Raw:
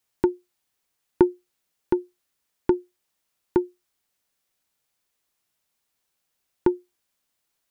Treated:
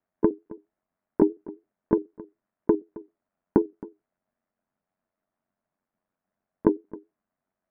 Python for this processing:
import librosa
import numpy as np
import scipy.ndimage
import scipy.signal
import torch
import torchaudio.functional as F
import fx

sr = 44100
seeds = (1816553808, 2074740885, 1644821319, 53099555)

p1 = fx.pitch_trill(x, sr, semitones=1.0, every_ms=76)
p2 = scipy.signal.sosfilt(scipy.signal.butter(4, 1700.0, 'lowpass', fs=sr, output='sos'), p1)
p3 = fx.level_steps(p2, sr, step_db=14)
p4 = p2 + (p3 * 10.0 ** (1.0 / 20.0))
p5 = p4 * np.sin(2.0 * np.pi * 46.0 * np.arange(len(p4)) / sr)
p6 = fx.small_body(p5, sr, hz=(210.0, 630.0), ring_ms=35, db=11)
p7 = p6 + fx.echo_single(p6, sr, ms=268, db=-20.0, dry=0)
y = p7 * 10.0 ** (-1.5 / 20.0)